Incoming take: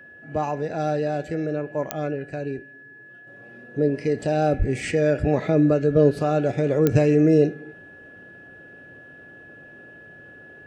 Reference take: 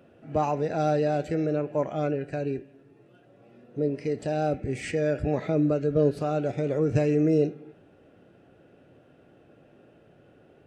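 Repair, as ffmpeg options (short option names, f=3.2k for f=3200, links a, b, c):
-filter_complex "[0:a]adeclick=t=4,bandreject=f=1.7k:w=30,asplit=3[a][b][c];[a]afade=t=out:st=4.58:d=0.02[d];[b]highpass=f=140:w=0.5412,highpass=f=140:w=1.3066,afade=t=in:st=4.58:d=0.02,afade=t=out:st=4.7:d=0.02[e];[c]afade=t=in:st=4.7:d=0.02[f];[d][e][f]amix=inputs=3:normalize=0,asetnsamples=n=441:p=0,asendcmd='3.27 volume volume -5.5dB',volume=0dB"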